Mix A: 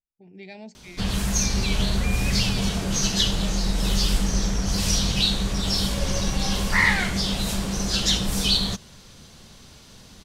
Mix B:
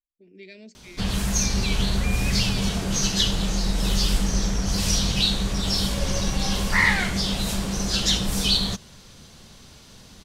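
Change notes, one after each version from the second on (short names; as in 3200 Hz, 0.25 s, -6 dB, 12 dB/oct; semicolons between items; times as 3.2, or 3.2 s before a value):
speech: add fixed phaser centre 340 Hz, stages 4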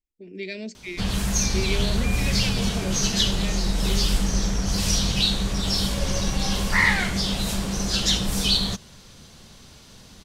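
speech +11.0 dB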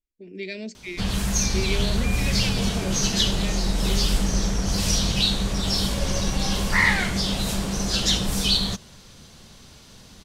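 second sound +3.5 dB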